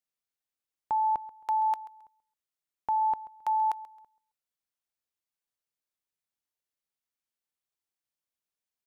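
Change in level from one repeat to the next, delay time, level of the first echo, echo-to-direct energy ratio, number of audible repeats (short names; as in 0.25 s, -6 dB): -11.0 dB, 0.134 s, -18.5 dB, -18.0 dB, 2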